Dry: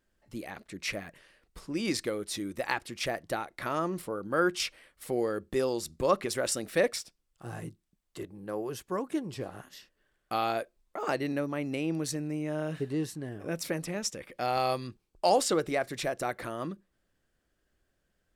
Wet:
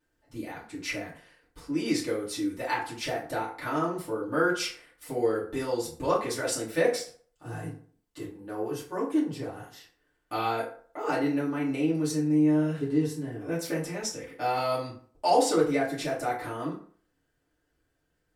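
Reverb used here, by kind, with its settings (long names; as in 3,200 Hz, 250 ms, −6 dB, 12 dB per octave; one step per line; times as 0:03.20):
feedback delay network reverb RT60 0.49 s, low-frequency decay 0.85×, high-frequency decay 0.6×, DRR −8 dB
level −7 dB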